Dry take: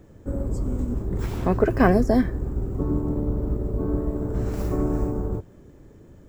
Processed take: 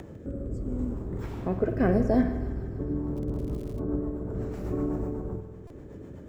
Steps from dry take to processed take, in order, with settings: rotary speaker horn 0.75 Hz, later 8 Hz, at 2.77; spring tank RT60 1.1 s, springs 48 ms, chirp 50 ms, DRR 8 dB; upward compressor, threshold -26 dBFS; HPF 91 Hz 6 dB/oct; high shelf 3500 Hz -9 dB; thin delay 0.153 s, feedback 71%, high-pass 1400 Hz, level -14 dB; 3.15–3.78 crackle 75/s -> 240/s -37 dBFS; stuck buffer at 5.67, samples 128, times 10; gain -3 dB

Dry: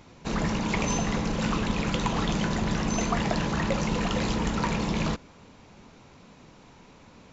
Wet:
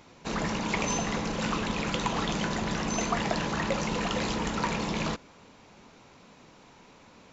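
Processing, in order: low shelf 200 Hz -8.5 dB

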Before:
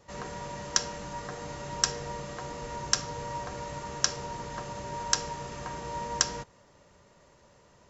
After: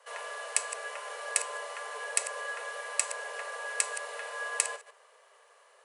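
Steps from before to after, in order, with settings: reverse delay 0.125 s, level -12 dB; frequency shift +290 Hz; speed mistake 33 rpm record played at 45 rpm; gain -1.5 dB

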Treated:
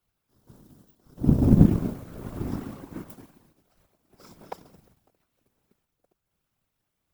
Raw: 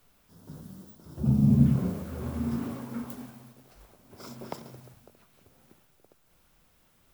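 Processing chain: power-law curve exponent 1.4; whisperiser; gain +6 dB

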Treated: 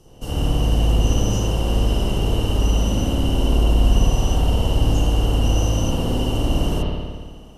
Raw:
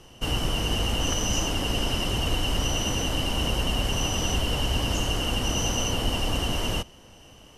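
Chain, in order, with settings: bell 2000 Hz -14 dB 1.9 oct; reverb RT60 1.6 s, pre-delay 56 ms, DRR -7 dB

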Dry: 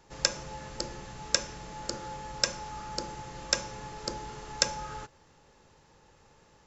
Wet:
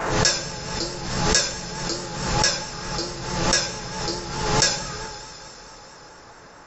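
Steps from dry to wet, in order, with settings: two-slope reverb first 0.49 s, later 4.8 s, from -19 dB, DRR -9 dB; vibrato 4.6 Hz 47 cents; band noise 240–1700 Hz -48 dBFS; backwards sustainer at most 45 dB/s; gain -1 dB

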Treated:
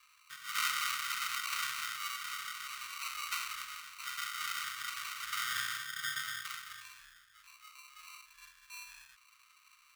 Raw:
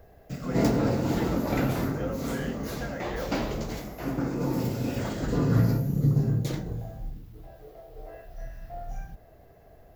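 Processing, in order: sample-and-hold 26×; elliptic high-pass 1200 Hz, stop band 40 dB

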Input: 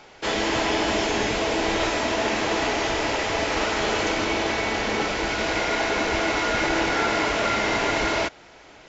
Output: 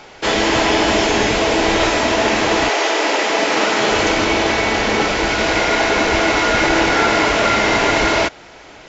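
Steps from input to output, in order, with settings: 2.68–3.9 HPF 410 Hz -> 120 Hz 24 dB/oct; gain +8 dB

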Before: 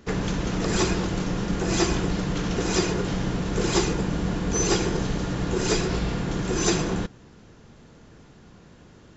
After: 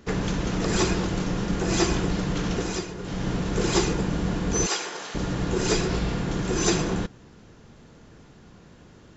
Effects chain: 2.52–3.31 dip -10.5 dB, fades 0.33 s; 4.66–5.15 HPF 760 Hz 12 dB/oct

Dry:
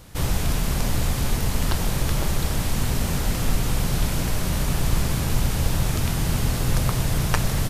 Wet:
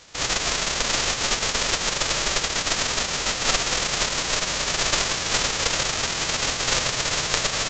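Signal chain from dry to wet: spectral whitening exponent 0.1; downsampling 16000 Hz; gain -1 dB

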